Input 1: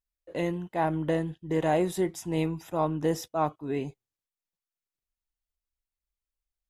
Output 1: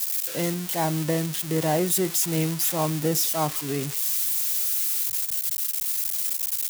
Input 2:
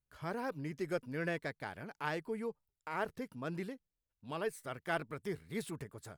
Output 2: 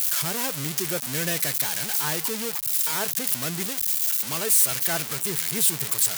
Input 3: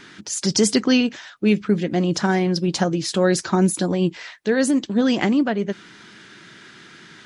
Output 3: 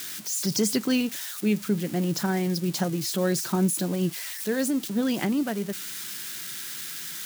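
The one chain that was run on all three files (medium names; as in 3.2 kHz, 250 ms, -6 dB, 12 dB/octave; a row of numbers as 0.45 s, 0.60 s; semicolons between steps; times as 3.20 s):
zero-crossing glitches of -18 dBFS; resonant low shelf 100 Hz -8.5 dB, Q 3; peak normalisation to -12 dBFS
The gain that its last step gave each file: +0.5 dB, +4.5 dB, -8.5 dB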